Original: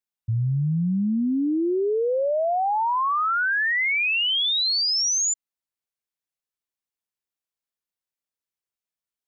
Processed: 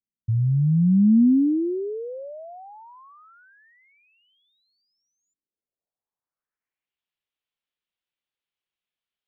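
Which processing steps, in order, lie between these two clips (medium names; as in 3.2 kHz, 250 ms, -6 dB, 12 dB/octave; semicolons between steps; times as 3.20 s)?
low-pass sweep 240 Hz -> 3.2 kHz, 5.15–6.99 s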